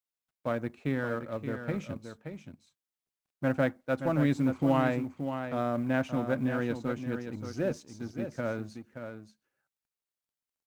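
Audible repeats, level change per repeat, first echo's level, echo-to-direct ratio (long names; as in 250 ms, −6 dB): 1, repeats not evenly spaced, −8.5 dB, −8.5 dB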